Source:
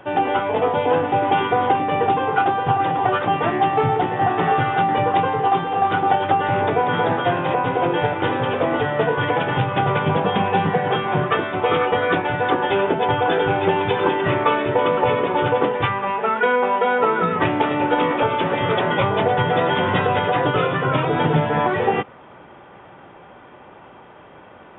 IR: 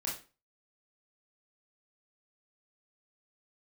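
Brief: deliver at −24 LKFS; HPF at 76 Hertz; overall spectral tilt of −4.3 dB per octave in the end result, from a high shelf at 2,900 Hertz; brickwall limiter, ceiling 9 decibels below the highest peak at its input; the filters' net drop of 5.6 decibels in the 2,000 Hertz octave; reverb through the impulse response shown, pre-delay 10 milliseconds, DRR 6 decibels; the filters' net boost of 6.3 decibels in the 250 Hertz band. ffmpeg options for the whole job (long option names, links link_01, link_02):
-filter_complex "[0:a]highpass=76,equalizer=frequency=250:width_type=o:gain=9,equalizer=frequency=2000:width_type=o:gain=-5.5,highshelf=frequency=2900:gain=-8,alimiter=limit=-11dB:level=0:latency=1,asplit=2[link_01][link_02];[1:a]atrim=start_sample=2205,adelay=10[link_03];[link_02][link_03]afir=irnorm=-1:irlink=0,volume=-8.5dB[link_04];[link_01][link_04]amix=inputs=2:normalize=0,volume=-5dB"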